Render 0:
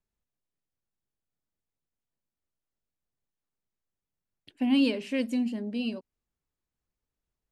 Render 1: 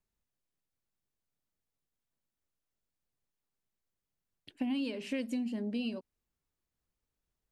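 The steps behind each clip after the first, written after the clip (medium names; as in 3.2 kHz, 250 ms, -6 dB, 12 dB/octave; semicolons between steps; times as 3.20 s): compression 12:1, threshold -31 dBFS, peak gain reduction 12 dB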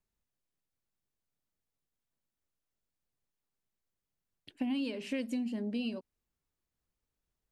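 no audible change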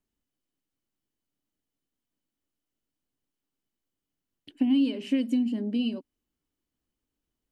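small resonant body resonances 280/3000 Hz, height 12 dB, ringing for 30 ms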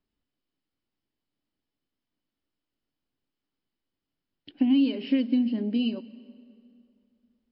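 plate-style reverb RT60 2.7 s, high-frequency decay 0.7×, pre-delay 115 ms, DRR 19.5 dB; trim +2 dB; MP3 32 kbps 12 kHz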